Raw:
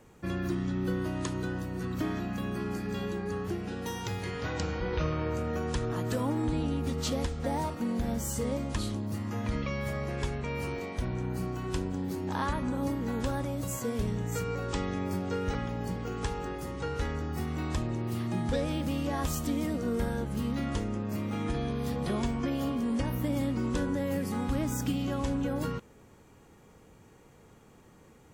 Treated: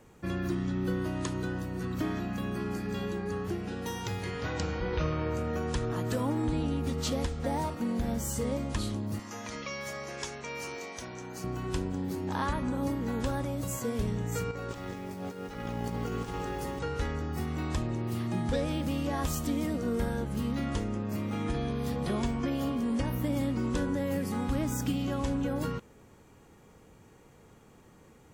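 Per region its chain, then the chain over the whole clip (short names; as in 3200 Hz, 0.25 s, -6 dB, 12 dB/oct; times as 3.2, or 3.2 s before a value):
9.19–11.44 HPF 610 Hz 6 dB/oct + bell 6100 Hz +10.5 dB 0.64 oct
14.51–16.79 low shelf 220 Hz -4.5 dB + negative-ratio compressor -37 dBFS, ratio -0.5 + lo-fi delay 0.188 s, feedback 35%, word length 9-bit, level -6 dB
whole clip: dry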